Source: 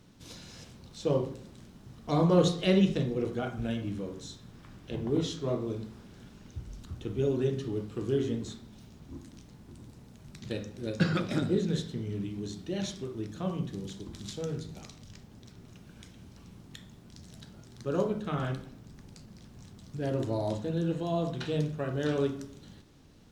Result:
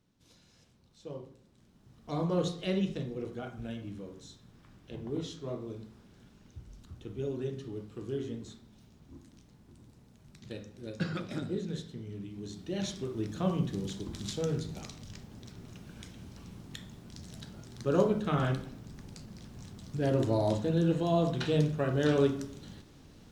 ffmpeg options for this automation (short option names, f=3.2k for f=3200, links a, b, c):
-af "volume=3dB,afade=t=in:st=1.49:d=0.66:silence=0.398107,afade=t=in:st=12.28:d=1.09:silence=0.316228"